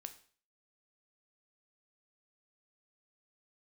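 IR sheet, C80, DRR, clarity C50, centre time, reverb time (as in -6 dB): 17.5 dB, 8.0 dB, 13.5 dB, 7 ms, 0.45 s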